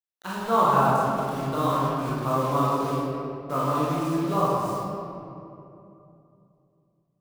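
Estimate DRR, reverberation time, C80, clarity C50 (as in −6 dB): −9.0 dB, 2.8 s, −1.5 dB, −4.0 dB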